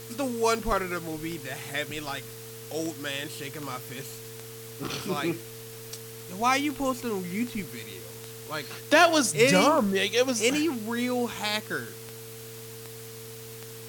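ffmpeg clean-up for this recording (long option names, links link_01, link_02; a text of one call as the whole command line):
ffmpeg -i in.wav -af "adeclick=threshold=4,bandreject=frequency=117.6:width_type=h:width=4,bandreject=frequency=235.2:width_type=h:width=4,bandreject=frequency=352.8:width_type=h:width=4,bandreject=frequency=450:width=30,afwtdn=0.0056" out.wav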